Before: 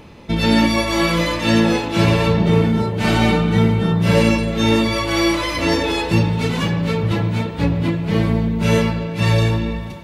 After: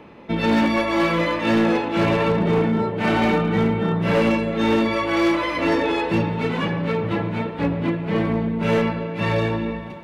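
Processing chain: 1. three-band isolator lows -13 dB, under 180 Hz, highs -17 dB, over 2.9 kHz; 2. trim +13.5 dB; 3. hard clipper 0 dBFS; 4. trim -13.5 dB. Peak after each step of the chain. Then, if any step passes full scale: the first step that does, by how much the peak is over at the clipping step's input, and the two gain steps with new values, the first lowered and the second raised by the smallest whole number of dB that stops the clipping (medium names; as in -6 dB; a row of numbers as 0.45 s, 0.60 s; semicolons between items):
-4.5 dBFS, +9.0 dBFS, 0.0 dBFS, -13.5 dBFS; step 2, 9.0 dB; step 2 +4.5 dB, step 4 -4.5 dB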